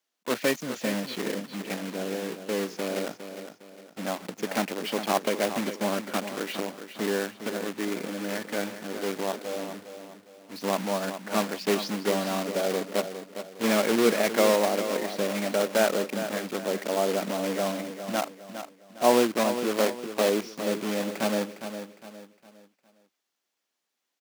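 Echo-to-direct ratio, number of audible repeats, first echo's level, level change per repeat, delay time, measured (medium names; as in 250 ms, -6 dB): -9.5 dB, 3, -10.0 dB, -8.5 dB, 408 ms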